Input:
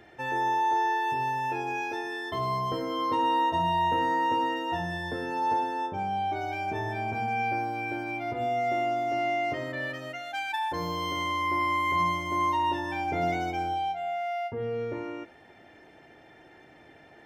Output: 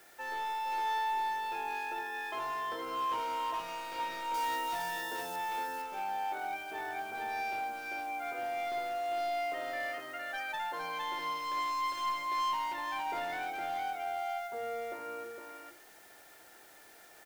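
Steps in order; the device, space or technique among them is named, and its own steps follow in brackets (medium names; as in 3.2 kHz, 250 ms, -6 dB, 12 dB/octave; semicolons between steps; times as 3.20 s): drive-through speaker (band-pass 440–4000 Hz; peaking EQ 1.4 kHz +8 dB 0.39 oct; hard clipper -27.5 dBFS, distortion -11 dB; white noise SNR 23 dB); hum notches 50/100/150/200/250/300/350 Hz; 4.34–5.36 s: tone controls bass +2 dB, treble +12 dB; delay 460 ms -4 dB; trim -6.5 dB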